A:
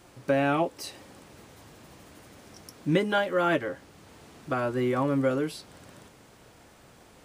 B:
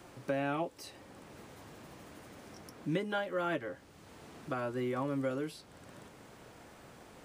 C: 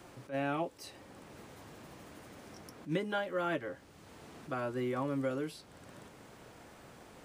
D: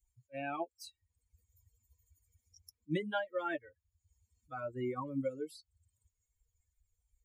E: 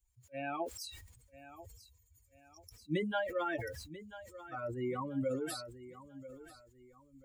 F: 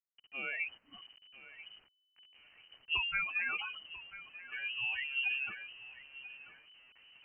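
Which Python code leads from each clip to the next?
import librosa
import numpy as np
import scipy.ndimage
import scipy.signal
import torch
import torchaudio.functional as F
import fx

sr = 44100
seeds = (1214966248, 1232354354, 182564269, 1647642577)

y1 = fx.band_squash(x, sr, depth_pct=40)
y1 = F.gain(torch.from_numpy(y1), -8.5).numpy()
y2 = fx.attack_slew(y1, sr, db_per_s=260.0)
y3 = fx.bin_expand(y2, sr, power=3.0)
y3 = F.gain(torch.from_numpy(y3), 2.5).numpy()
y4 = fx.echo_feedback(y3, sr, ms=989, feedback_pct=35, wet_db=-15.0)
y4 = fx.sustainer(y4, sr, db_per_s=49.0)
y5 = fx.delta_hold(y4, sr, step_db=-55.5)
y5 = fx.freq_invert(y5, sr, carrier_hz=3000)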